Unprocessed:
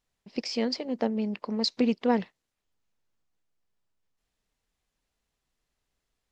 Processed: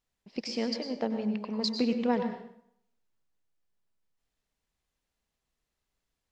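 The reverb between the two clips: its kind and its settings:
dense smooth reverb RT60 0.7 s, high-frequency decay 0.75×, pre-delay 85 ms, DRR 6.5 dB
level −3.5 dB

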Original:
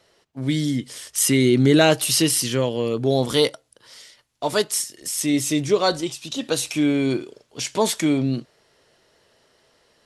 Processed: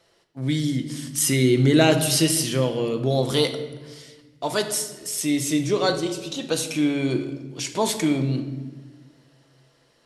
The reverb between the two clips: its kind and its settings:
rectangular room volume 980 cubic metres, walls mixed, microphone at 0.76 metres
level −2.5 dB

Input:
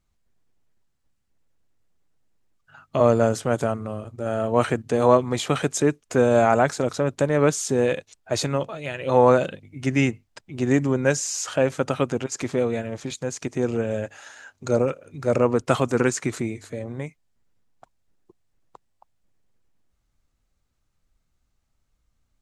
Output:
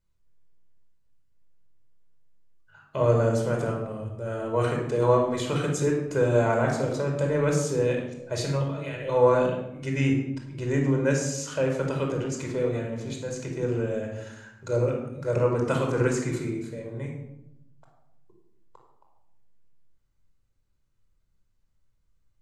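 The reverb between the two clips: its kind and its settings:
rectangular room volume 2,700 cubic metres, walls furnished, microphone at 4.9 metres
level −9.5 dB

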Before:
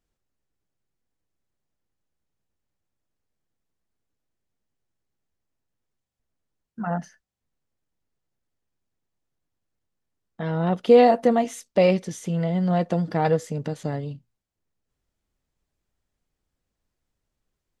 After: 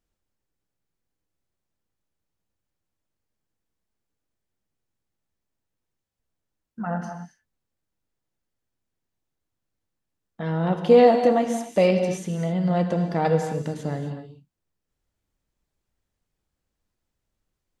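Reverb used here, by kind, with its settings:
reverb whose tail is shaped and stops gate 290 ms flat, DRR 5.5 dB
level −1 dB

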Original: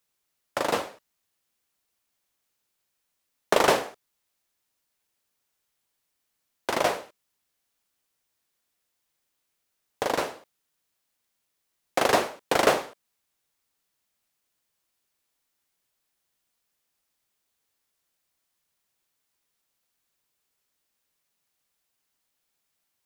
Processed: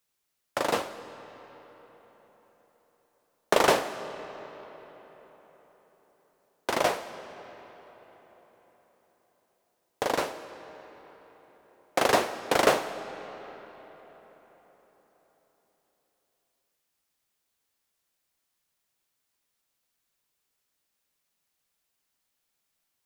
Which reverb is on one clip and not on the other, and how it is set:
comb and all-pass reverb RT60 4.6 s, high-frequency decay 0.65×, pre-delay 110 ms, DRR 13 dB
level −1 dB

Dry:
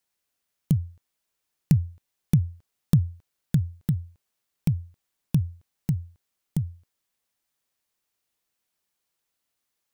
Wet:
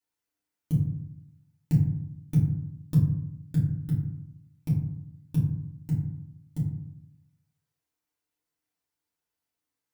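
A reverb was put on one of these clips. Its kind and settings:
feedback delay network reverb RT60 0.77 s, low-frequency decay 1.35×, high-frequency decay 0.4×, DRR −8 dB
level −13.5 dB

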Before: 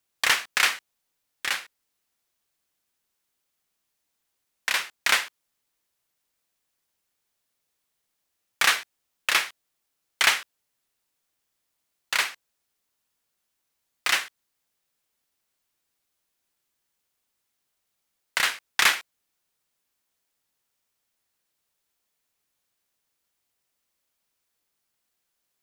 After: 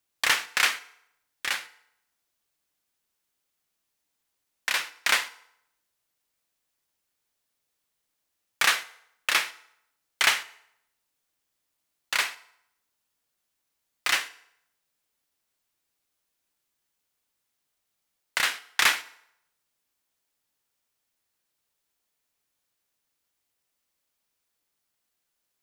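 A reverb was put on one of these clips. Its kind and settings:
feedback delay network reverb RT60 0.76 s, low-frequency decay 0.7×, high-frequency decay 0.8×, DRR 13.5 dB
level −1.5 dB

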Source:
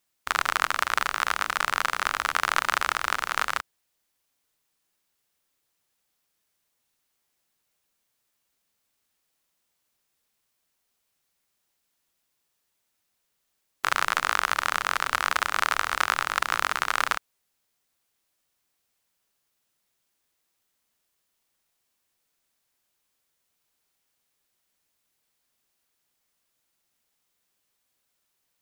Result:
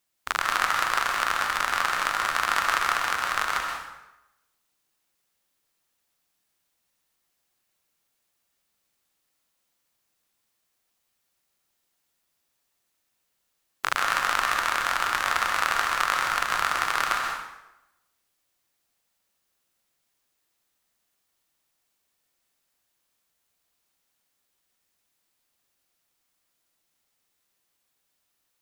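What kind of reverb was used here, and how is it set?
dense smooth reverb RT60 0.92 s, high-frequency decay 0.8×, pre-delay 115 ms, DRR 1 dB
level −1.5 dB

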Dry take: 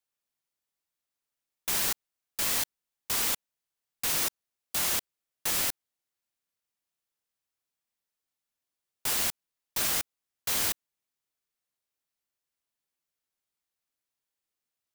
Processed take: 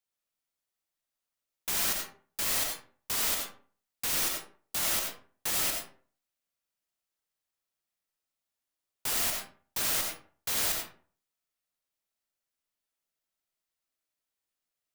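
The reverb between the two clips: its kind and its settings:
comb and all-pass reverb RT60 0.45 s, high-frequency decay 0.6×, pre-delay 45 ms, DRR 1.5 dB
level −2.5 dB

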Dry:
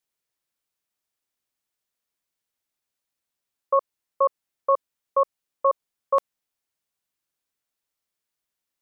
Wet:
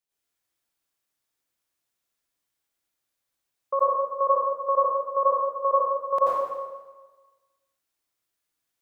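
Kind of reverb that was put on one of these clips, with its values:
dense smooth reverb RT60 1.3 s, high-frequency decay 0.9×, pre-delay 75 ms, DRR −8.5 dB
level −6 dB

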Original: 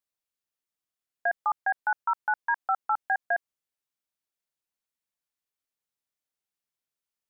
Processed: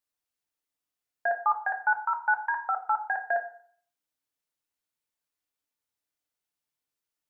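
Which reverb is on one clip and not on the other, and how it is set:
feedback delay network reverb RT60 0.54 s, low-frequency decay 0.8×, high-frequency decay 0.65×, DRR 3.5 dB

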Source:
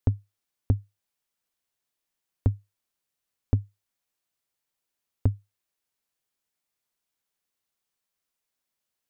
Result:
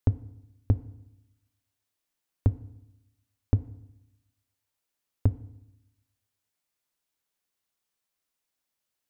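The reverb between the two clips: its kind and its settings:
feedback delay network reverb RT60 0.85 s, low-frequency decay 1.25×, high-frequency decay 0.8×, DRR 14.5 dB

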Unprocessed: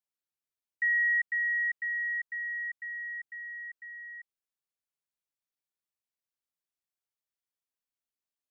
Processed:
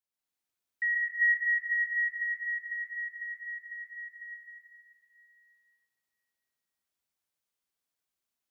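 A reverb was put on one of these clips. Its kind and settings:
dense smooth reverb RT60 2.3 s, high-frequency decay 0.95×, pre-delay 115 ms, DRR −6.5 dB
level −2 dB

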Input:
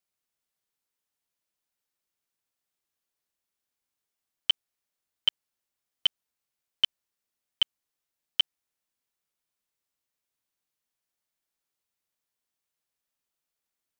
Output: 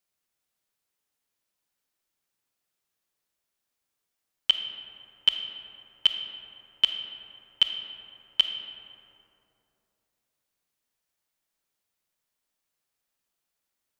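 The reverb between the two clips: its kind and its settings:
comb and all-pass reverb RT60 2.9 s, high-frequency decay 0.4×, pre-delay 0 ms, DRR 5.5 dB
level +3 dB

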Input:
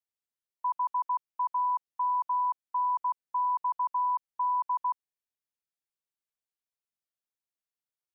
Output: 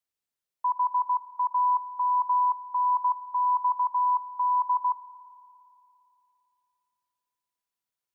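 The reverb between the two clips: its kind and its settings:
spring reverb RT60 3 s, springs 56 ms, chirp 30 ms, DRR 15 dB
level +3.5 dB

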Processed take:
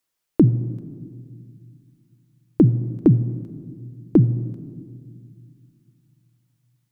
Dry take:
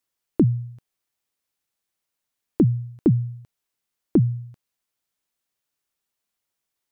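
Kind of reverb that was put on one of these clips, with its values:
rectangular room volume 3,400 cubic metres, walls mixed, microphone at 0.53 metres
level +3 dB

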